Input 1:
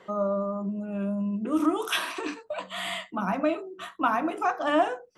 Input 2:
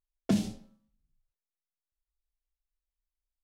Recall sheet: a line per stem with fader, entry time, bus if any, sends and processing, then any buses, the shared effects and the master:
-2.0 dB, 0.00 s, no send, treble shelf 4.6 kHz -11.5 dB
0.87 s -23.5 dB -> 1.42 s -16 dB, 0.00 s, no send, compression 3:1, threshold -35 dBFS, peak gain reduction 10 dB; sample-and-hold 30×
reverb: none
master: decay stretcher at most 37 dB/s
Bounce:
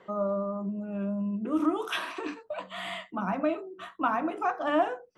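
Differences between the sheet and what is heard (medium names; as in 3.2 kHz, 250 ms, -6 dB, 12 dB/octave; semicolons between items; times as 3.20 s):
stem 2 -23.5 dB -> -34.0 dB; master: missing decay stretcher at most 37 dB/s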